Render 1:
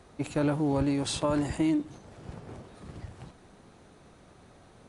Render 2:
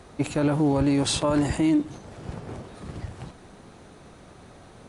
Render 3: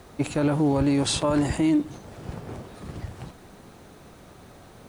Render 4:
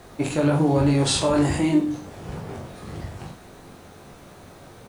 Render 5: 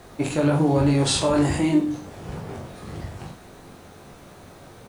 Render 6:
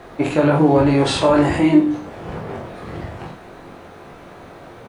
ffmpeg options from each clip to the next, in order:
-af "alimiter=limit=0.0944:level=0:latency=1:release=61,volume=2.24"
-af "acrusher=bits=9:mix=0:aa=0.000001"
-filter_complex "[0:a]bandreject=f=50:t=h:w=6,bandreject=f=100:t=h:w=6,bandreject=f=150:t=h:w=6,bandreject=f=200:t=h:w=6,bandreject=f=250:t=h:w=6,bandreject=f=300:t=h:w=6,flanger=delay=5.7:depth=9.2:regen=-62:speed=1.1:shape=triangular,asplit=2[s0][s1];[s1]aecho=0:1:20|43|69.45|99.87|134.8:0.631|0.398|0.251|0.158|0.1[s2];[s0][s2]amix=inputs=2:normalize=0,volume=1.88"
-af anull
-filter_complex "[0:a]bass=f=250:g=-6,treble=f=4000:g=-14,asplit=2[s0][s1];[s1]adelay=26,volume=0.282[s2];[s0][s2]amix=inputs=2:normalize=0,volume=2.37"

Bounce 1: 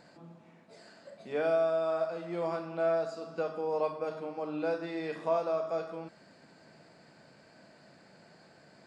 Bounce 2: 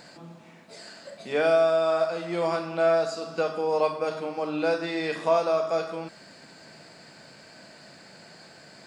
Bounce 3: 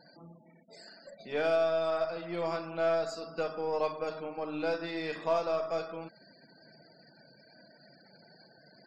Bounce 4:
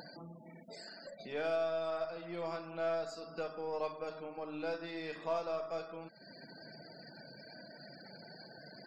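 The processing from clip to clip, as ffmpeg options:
-af "highshelf=f=2000:g=9.5,volume=2"
-af "afftfilt=real='re*gte(hypot(re,im),0.00631)':imag='im*gte(hypot(re,im),0.00631)':win_size=1024:overlap=0.75,aeval=exprs='0.282*(cos(1*acos(clip(val(0)/0.282,-1,1)))-cos(1*PI/2))+0.00708*(cos(8*acos(clip(val(0)/0.282,-1,1)))-cos(8*PI/2))':c=same,highshelf=f=6800:g=4,volume=0.447"
-af "acompressor=mode=upward:threshold=0.02:ratio=2.5,volume=0.473"

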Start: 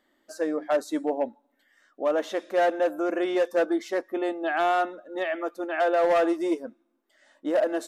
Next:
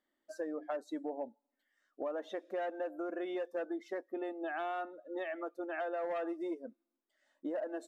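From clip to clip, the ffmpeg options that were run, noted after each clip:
-af "afftdn=nr=13:nf=-38,acompressor=threshold=0.0178:ratio=4,volume=0.75"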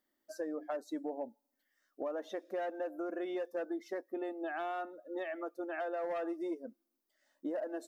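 -af "lowshelf=f=360:g=3,aexciter=amount=1.1:drive=8.8:freq=4600,volume=0.891"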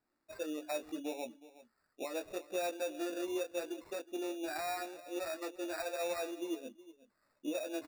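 -filter_complex "[0:a]flanger=delay=16.5:depth=4:speed=0.8,acrossover=split=240[s0][s1];[s1]acrusher=samples=14:mix=1:aa=0.000001[s2];[s0][s2]amix=inputs=2:normalize=0,aecho=1:1:367:0.133,volume=1.26"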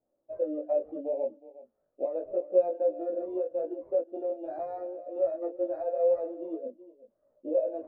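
-af "flanger=delay=15.5:depth=3.6:speed=0.32,lowpass=f=570:t=q:w=6.2,volume=1.33"

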